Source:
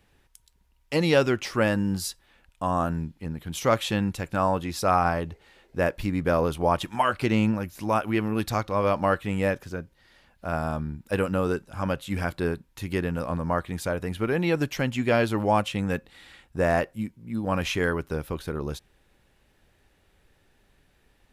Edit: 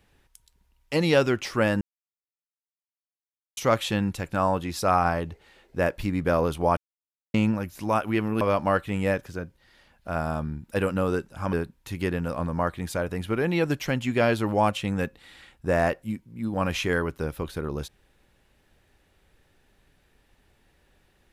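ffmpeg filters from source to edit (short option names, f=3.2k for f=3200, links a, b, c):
-filter_complex "[0:a]asplit=7[a][b][c][d][e][f][g];[a]atrim=end=1.81,asetpts=PTS-STARTPTS,afade=t=out:st=1.806:d=0.004:c=hsin[h];[b]atrim=start=1.81:end=3.57,asetpts=PTS-STARTPTS,volume=0[i];[c]atrim=start=3.57:end=6.77,asetpts=PTS-STARTPTS,afade=t=in:d=0.004:c=hsin,afade=t=out:st=3.196:d=0.004:c=hsin[j];[d]atrim=start=6.77:end=7.34,asetpts=PTS-STARTPTS,volume=0[k];[e]atrim=start=7.34:end=8.412,asetpts=PTS-STARTPTS,afade=t=in:d=0.004:c=hsin[l];[f]atrim=start=8.778:end=11.902[m];[g]atrim=start=12.438[n];[h][i][j][k][l]concat=n=5:v=0:a=1[o];[o][m]acrossfade=d=0.004:c1=hsin:c2=hsin[p];[p][n]acrossfade=d=0.004:c1=hsin:c2=hsin"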